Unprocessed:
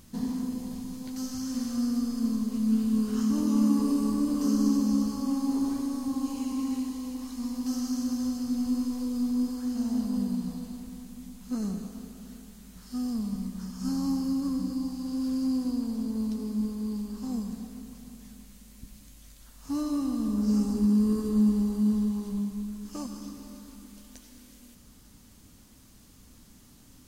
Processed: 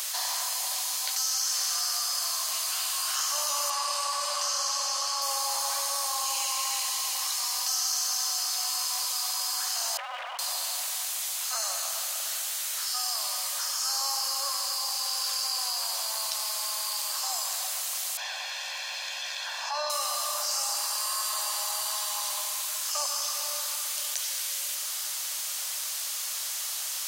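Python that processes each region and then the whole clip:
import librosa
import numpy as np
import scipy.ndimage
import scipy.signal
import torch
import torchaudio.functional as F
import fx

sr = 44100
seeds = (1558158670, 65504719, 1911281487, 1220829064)

y = fx.chain(x, sr, fx.highpass(hz=550.0, slope=12),
    fx.air_absorb(metres=53.0), at=(3.7, 5.22))
y = fx.chain(y, sr, fx.sine_speech(),
    fx.highpass(hz=650.0, slope=12),
    fx.running_max(window=33), at=(9.97, 10.39))
y = fx.chain(y, sr, fx.air_absorb(metres=230.0),
    fx.comb(ms=1.2, depth=0.86), at=(18.17, 19.9))
y = scipy.signal.sosfilt(scipy.signal.cheby1(10, 1.0, 550.0, 'highpass', fs=sr, output='sos'), y)
y = fx.tilt_shelf(y, sr, db=-7.5, hz=1100.0)
y = fx.env_flatten(y, sr, amount_pct=70)
y = y * librosa.db_to_amplitude(8.0)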